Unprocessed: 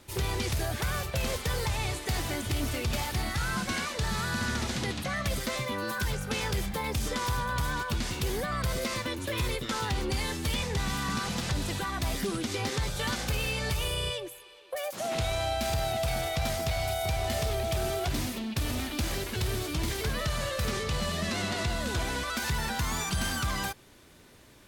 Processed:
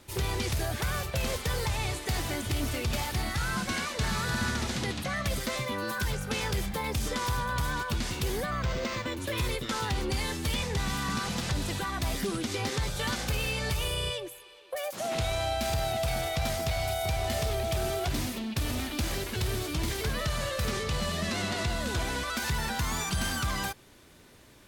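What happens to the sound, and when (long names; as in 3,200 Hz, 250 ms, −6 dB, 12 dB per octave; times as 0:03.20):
0:03.69–0:04.20: delay throw 300 ms, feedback 15%, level −6.5 dB
0:08.50–0:09.17: linearly interpolated sample-rate reduction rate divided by 4×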